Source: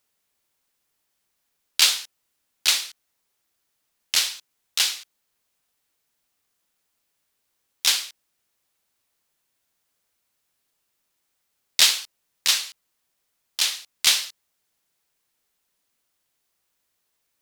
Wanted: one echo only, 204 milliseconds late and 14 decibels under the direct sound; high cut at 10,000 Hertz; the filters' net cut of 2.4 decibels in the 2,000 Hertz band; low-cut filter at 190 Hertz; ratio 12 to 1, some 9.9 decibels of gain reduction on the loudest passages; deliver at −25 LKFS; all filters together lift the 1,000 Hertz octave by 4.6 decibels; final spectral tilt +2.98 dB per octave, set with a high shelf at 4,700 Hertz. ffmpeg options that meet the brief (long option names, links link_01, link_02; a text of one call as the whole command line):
ffmpeg -i in.wav -af "highpass=190,lowpass=10000,equalizer=frequency=1000:width_type=o:gain=7.5,equalizer=frequency=2000:width_type=o:gain=-6.5,highshelf=frequency=4700:gain=6.5,acompressor=threshold=-20dB:ratio=12,aecho=1:1:204:0.2,volume=1.5dB" out.wav